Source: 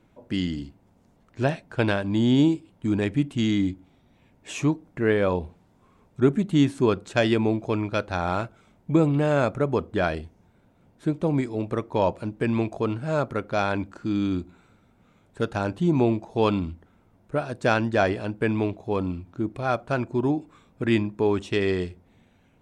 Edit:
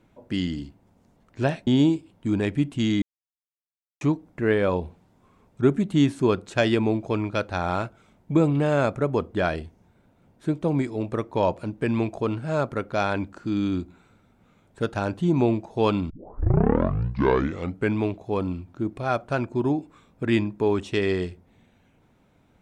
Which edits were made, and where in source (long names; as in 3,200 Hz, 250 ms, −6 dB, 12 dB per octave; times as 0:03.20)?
0:01.67–0:02.26: remove
0:03.61–0:04.60: silence
0:16.69: tape start 1.86 s